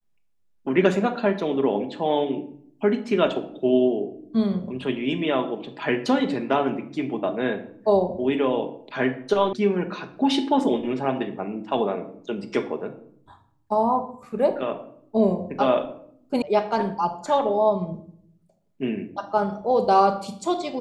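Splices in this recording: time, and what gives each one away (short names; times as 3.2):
9.53 sound cut off
16.42 sound cut off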